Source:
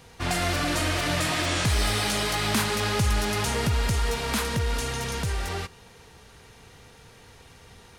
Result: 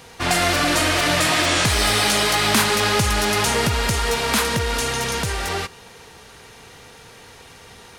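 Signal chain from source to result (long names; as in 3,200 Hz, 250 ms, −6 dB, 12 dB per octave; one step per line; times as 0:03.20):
low-shelf EQ 170 Hz −9.5 dB
level +8.5 dB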